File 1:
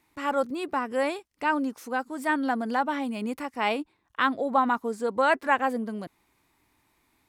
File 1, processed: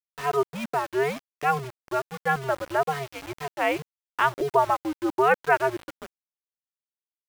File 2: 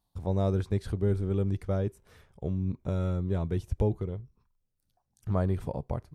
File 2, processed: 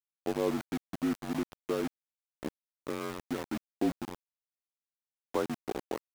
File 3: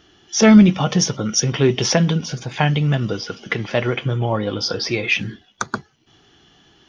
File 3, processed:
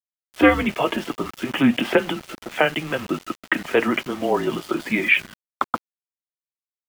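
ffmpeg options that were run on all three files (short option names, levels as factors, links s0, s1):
-af "highpass=f=270:t=q:w=0.5412,highpass=f=270:t=q:w=1.307,lowpass=f=3200:t=q:w=0.5176,lowpass=f=3200:t=q:w=0.7071,lowpass=f=3200:t=q:w=1.932,afreqshift=-140,highpass=190,aeval=exprs='val(0)*gte(abs(val(0)),0.0158)':c=same,volume=1.33"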